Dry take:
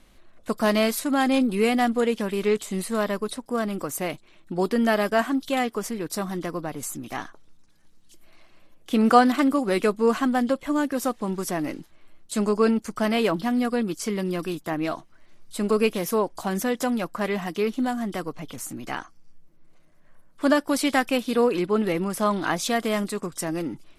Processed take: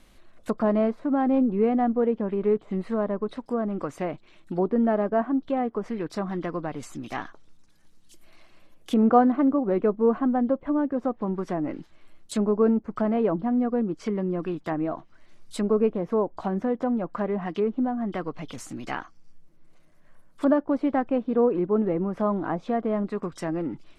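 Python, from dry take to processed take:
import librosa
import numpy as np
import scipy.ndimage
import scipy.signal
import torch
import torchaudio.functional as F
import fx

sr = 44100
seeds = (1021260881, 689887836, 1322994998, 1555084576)

y = fx.env_lowpass_down(x, sr, base_hz=860.0, full_db=-22.5)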